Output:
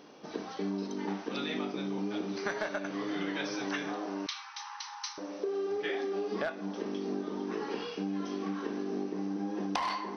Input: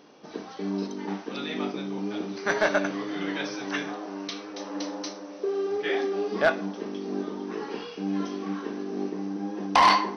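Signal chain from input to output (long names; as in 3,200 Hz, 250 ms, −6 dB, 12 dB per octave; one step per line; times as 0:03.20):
downward compressor 16 to 1, threshold −30 dBFS, peak gain reduction 16 dB
0:04.26–0:05.18: linear-phase brick-wall high-pass 770 Hz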